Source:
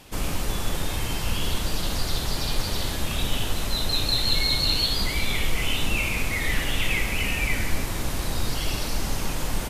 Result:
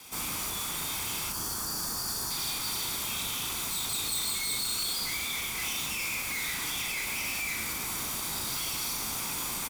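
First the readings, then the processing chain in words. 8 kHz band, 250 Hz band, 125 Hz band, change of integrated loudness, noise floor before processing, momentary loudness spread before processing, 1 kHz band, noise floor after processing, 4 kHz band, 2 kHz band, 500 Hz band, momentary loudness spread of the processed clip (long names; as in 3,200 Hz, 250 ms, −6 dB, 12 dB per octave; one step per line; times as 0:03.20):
+2.5 dB, −11.5 dB, −16.5 dB, −4.5 dB, −29 dBFS, 8 LU, −5.0 dB, −35 dBFS, −6.5 dB, −6.0 dB, −12.5 dB, 3 LU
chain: lower of the sound and its delayed copy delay 0.86 ms
brickwall limiter −17.5 dBFS, peak gain reduction 5 dB
high-pass filter 390 Hz 6 dB per octave
gain on a spectral selection 0:01.30–0:02.30, 1,900–4,200 Hz −13 dB
soft clipping −33.5 dBFS, distortion −9 dB
high-shelf EQ 5,900 Hz +8.5 dB
double-tracking delay 37 ms −6 dB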